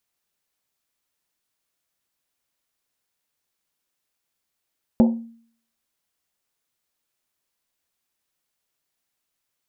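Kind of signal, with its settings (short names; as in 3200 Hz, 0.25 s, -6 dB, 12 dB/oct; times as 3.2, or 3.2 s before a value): Risset drum, pitch 230 Hz, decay 0.55 s, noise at 730 Hz, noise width 340 Hz, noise 10%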